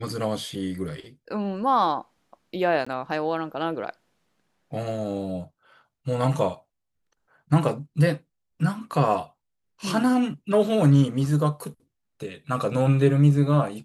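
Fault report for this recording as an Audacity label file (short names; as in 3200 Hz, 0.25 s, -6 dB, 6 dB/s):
2.850000	2.870000	gap 15 ms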